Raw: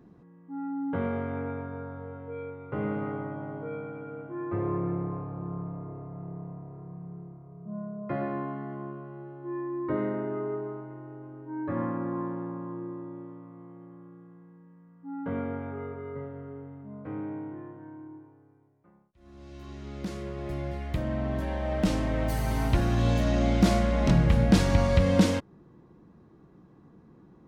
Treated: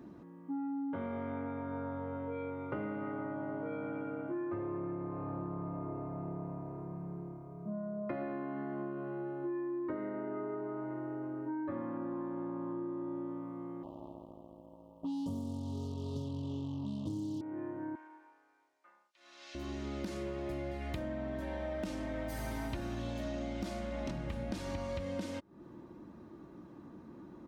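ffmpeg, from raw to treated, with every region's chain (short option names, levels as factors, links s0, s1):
-filter_complex "[0:a]asettb=1/sr,asplit=3[s0][s1][s2];[s0]atrim=end=13.834[s3];[s1]atrim=start=13.83:end=17.41,asetpts=PTS-STARTPTS,afade=t=in:d=0.004:c=qsin,afade=t=out:st=3.576:d=0.004:c=qsin,asubboost=boost=9.5:cutoff=210,acrusher=bits=6:mix=0:aa=0.5,asuperstop=centerf=1800:order=12:qfactor=1[s4];[s2]atrim=start=17.406[s5];[s3][s4]acrossfade=d=0.004:c1=hsin:c2=qsin[s6];[s6][s5]acrossfade=d=0.004:c1=qsin:c2=hsin,asettb=1/sr,asplit=3[s7][s8][s9];[s7]atrim=end=17.954[s10];[s8]atrim=start=17.95:end=19.55,asetpts=PTS-STARTPTS,afade=t=in:d=0.004:c=qsin,afade=t=out:st=1.596:d=0.004:c=qsin,highpass=670,lowpass=5800,tiltshelf=f=1200:g=-9[s11];[s9]atrim=start=19.546[s12];[s10][s11]acrossfade=d=0.004:c1=hsin:c2=qsin[s13];[s13][s12]acrossfade=d=0.004:c1=qsin:c2=hsin,highpass=f=100:p=1,aecho=1:1:3.3:0.45,acompressor=threshold=0.0112:ratio=16,volume=1.58"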